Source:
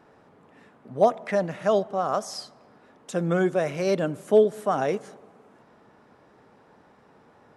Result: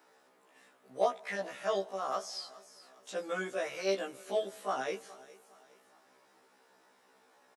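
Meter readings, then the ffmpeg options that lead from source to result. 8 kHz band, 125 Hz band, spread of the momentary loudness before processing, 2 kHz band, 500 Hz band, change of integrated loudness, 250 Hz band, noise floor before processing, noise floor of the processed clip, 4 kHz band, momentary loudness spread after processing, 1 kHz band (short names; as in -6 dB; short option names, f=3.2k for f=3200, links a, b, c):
-5.0 dB, under -20 dB, 12 LU, -5.0 dB, -11.5 dB, -11.0 dB, -16.5 dB, -57 dBFS, -67 dBFS, -2.5 dB, 18 LU, -9.0 dB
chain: -filter_complex "[0:a]highpass=330,aecho=1:1:414|828|1242:0.0944|0.0378|0.0151,crystalizer=i=5.5:c=0,acrossover=split=4800[a][b];[b]acompressor=threshold=-47dB:ratio=4:attack=1:release=60[c];[a][c]amix=inputs=2:normalize=0,afftfilt=real='re*1.73*eq(mod(b,3),0)':imag='im*1.73*eq(mod(b,3),0)':win_size=2048:overlap=0.75,volume=-8dB"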